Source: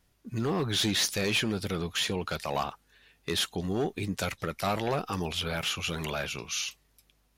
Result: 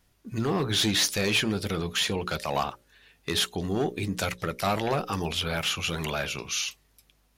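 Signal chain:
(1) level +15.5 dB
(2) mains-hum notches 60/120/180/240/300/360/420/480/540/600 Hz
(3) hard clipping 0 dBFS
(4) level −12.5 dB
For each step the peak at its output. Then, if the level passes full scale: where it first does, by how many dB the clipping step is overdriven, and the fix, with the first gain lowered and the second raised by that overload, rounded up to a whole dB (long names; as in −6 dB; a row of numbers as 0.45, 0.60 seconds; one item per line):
−3.0, −2.5, −2.5, −15.0 dBFS
no step passes full scale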